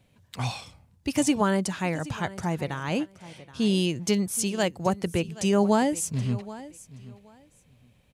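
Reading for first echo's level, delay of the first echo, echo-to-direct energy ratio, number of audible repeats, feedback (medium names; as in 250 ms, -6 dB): -17.5 dB, 775 ms, -17.5 dB, 2, 19%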